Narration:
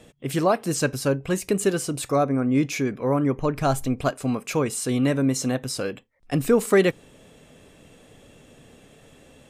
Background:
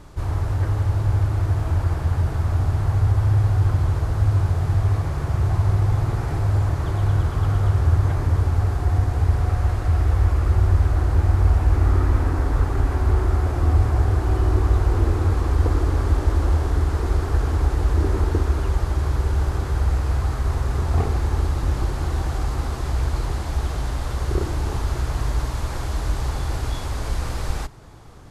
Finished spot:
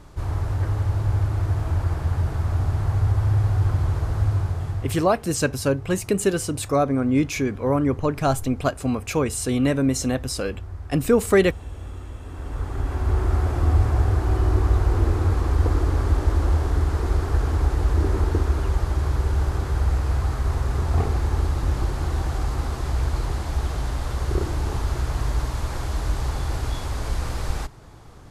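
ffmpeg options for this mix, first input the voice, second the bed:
-filter_complex "[0:a]adelay=4600,volume=1dB[a];[1:a]volume=15dB,afade=t=out:st=4.19:d=0.99:silence=0.158489,afade=t=in:st=12.24:d=1.14:silence=0.141254[b];[a][b]amix=inputs=2:normalize=0"

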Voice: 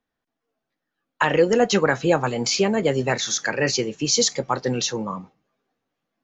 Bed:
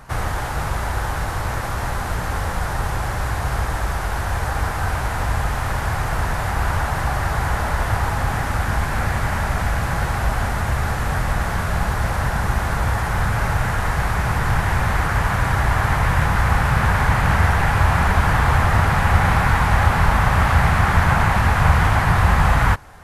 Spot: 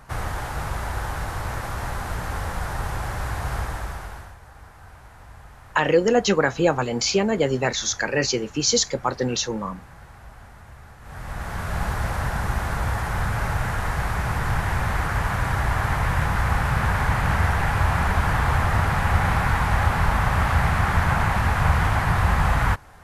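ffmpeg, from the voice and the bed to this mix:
-filter_complex "[0:a]adelay=4550,volume=-0.5dB[a];[1:a]volume=14dB,afade=t=out:st=3.57:d=0.79:silence=0.11885,afade=t=in:st=11.01:d=0.84:silence=0.112202[b];[a][b]amix=inputs=2:normalize=0"

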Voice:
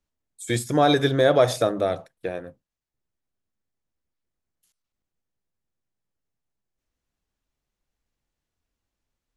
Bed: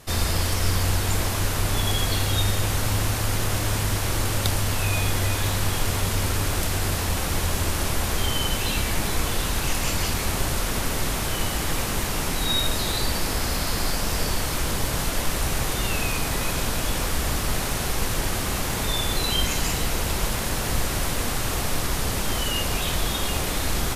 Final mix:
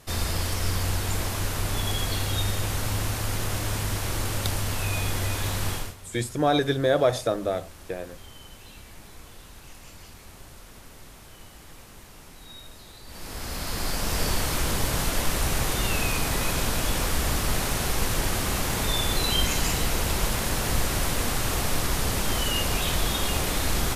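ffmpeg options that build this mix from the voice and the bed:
-filter_complex "[0:a]adelay=5650,volume=-3.5dB[a];[1:a]volume=17dB,afade=t=out:st=5.71:d=0.24:silence=0.133352,afade=t=in:st=13.05:d=1.24:silence=0.0891251[b];[a][b]amix=inputs=2:normalize=0"

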